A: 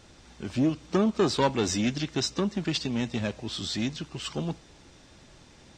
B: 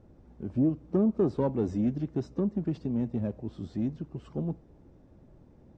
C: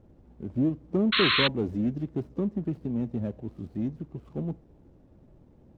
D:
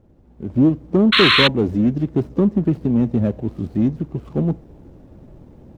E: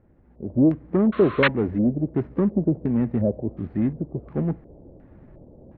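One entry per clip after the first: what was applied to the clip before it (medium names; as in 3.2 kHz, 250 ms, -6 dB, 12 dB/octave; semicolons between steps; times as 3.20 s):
FFT filter 240 Hz 0 dB, 540 Hz -3 dB, 3.6 kHz -29 dB
median filter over 25 samples; painted sound noise, 1.12–1.48 s, 1–4.3 kHz -24 dBFS
level rider gain up to 10.5 dB; in parallel at -11 dB: hard clipper -13.5 dBFS, distortion -13 dB
LFO low-pass square 1.4 Hz 600–1900 Hz; trim -5 dB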